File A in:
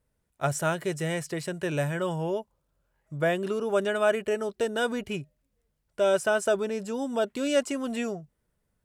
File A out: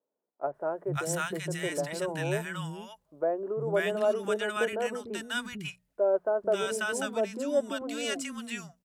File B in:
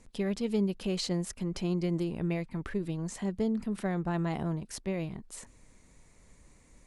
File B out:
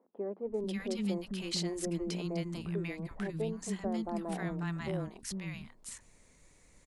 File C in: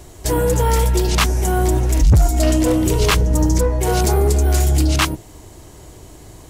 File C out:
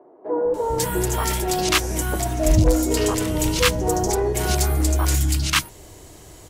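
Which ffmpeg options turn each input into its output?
-filter_complex "[0:a]lowshelf=f=180:g=-5,bandreject=f=60:t=h:w=6,bandreject=f=120:t=h:w=6,bandreject=f=180:t=h:w=6,bandreject=f=240:t=h:w=6,acrossover=split=270|1000[a][b][c];[a]adelay=450[d];[c]adelay=540[e];[d][b][e]amix=inputs=3:normalize=0"

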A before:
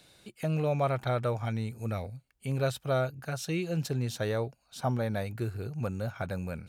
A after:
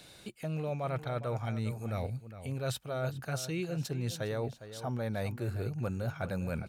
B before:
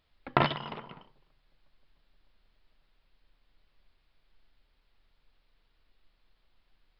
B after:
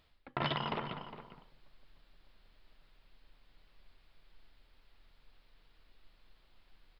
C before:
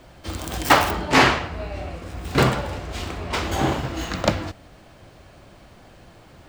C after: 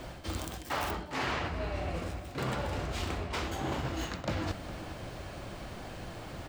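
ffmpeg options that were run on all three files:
-filter_complex "[0:a]areverse,acompressor=threshold=-36dB:ratio=16,areverse,asplit=2[a][b];[b]adelay=408.2,volume=-12dB,highshelf=f=4k:g=-9.18[c];[a][c]amix=inputs=2:normalize=0,volume=5dB"

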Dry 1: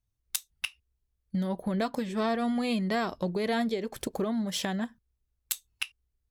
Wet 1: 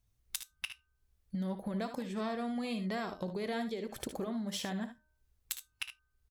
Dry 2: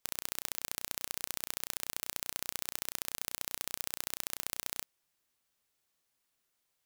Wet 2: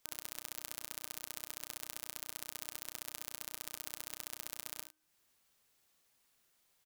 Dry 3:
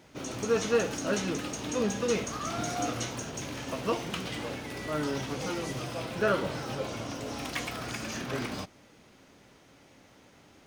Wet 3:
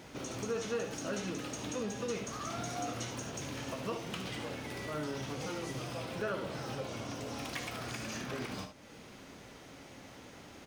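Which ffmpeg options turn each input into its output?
-filter_complex "[0:a]bandreject=f=307.9:t=h:w=4,bandreject=f=615.8:t=h:w=4,bandreject=f=923.7:t=h:w=4,bandreject=f=1.2316k:t=h:w=4,bandreject=f=1.5395k:t=h:w=4,acompressor=threshold=-52dB:ratio=2,asplit=2[a][b];[b]aecho=0:1:59|74:0.224|0.266[c];[a][c]amix=inputs=2:normalize=0,volume=5.5dB"

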